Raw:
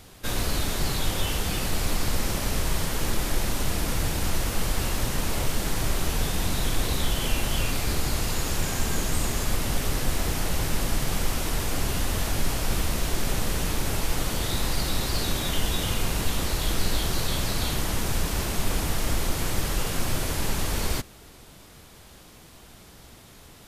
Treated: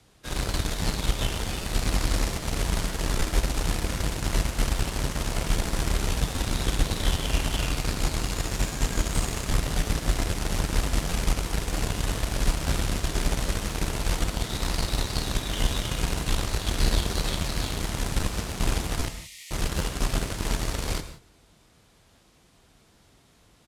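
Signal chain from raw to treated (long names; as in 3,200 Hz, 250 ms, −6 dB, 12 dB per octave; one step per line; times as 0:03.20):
low-pass filter 10,000 Hz 12 dB per octave
frequency shifter +24 Hz
0:19.08–0:19.51: linear-phase brick-wall high-pass 1,800 Hz
harmonic generator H 7 −20 dB, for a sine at −9.5 dBFS
single-tap delay 145 ms −23.5 dB
reverb whose tail is shaped and stops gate 200 ms flat, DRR 10 dB
regular buffer underruns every 0.79 s, samples 512, repeat, from 0:00.82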